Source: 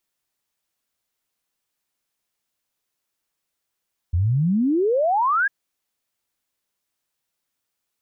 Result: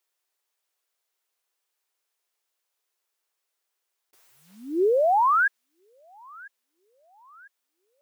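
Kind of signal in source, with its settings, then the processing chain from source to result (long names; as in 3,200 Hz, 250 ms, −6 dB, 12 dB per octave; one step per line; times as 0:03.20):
exponential sine sweep 80 Hz → 1,700 Hz 1.35 s −16.5 dBFS
one scale factor per block 7 bits
elliptic high-pass filter 370 Hz, stop band 70 dB
delay with a high-pass on its return 999 ms, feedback 48%, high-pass 1,500 Hz, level −19.5 dB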